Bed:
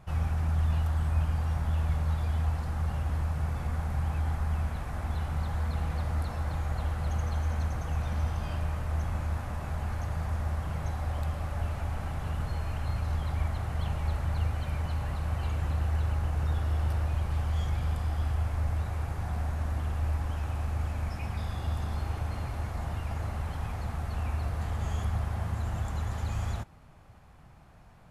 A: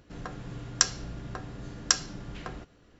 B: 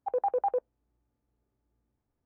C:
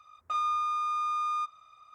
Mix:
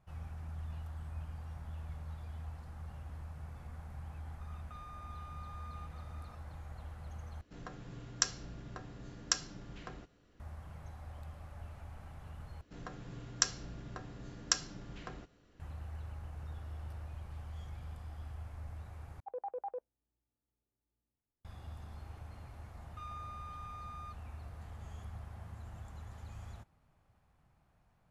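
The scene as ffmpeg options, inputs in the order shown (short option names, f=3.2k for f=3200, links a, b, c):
-filter_complex "[3:a]asplit=2[a][b];[1:a]asplit=2[c][d];[0:a]volume=-16dB[e];[a]acompressor=threshold=-48dB:ratio=6:attack=3.2:release=140:knee=1:detection=peak[f];[e]asplit=4[g][h][i][j];[g]atrim=end=7.414[k];[c]atrim=end=2.99,asetpts=PTS-STARTPTS,volume=-8dB[l];[h]atrim=start=10.396:end=12.614[m];[d]atrim=end=2.99,asetpts=PTS-STARTPTS,volume=-7dB[n];[i]atrim=start=15.596:end=19.204[o];[2:a]atrim=end=2.25,asetpts=PTS-STARTPTS,volume=-13dB[p];[j]atrim=start=21.446[q];[f]atrim=end=1.94,asetpts=PTS-STARTPTS,volume=-4.5dB,afade=t=in:d=0.004:c=hsin,afade=t=out:st=1.936:d=0.004:c=hsin,adelay=194481S[r];[b]atrim=end=1.94,asetpts=PTS-STARTPTS,volume=-18dB,afade=t=in:d=0.004:c=hsin,afade=t=out:st=1.936:d=0.004:c=hsin,adelay=22670[s];[k][l]acrossfade=d=0.004:c1=hsin:c2=hsin[t];[t][m]acrossfade=d=0.004:c1=hsin:c2=hsin[u];[u][n]acrossfade=d=0.004:c1=hsin:c2=hsin[v];[v][o]acrossfade=d=0.004:c1=hsin:c2=hsin[w];[w][p]acrossfade=d=0.004:c1=hsin:c2=hsin[x];[x][q]acrossfade=d=0.004:c1=hsin:c2=hsin[y];[y][r][s]amix=inputs=3:normalize=0"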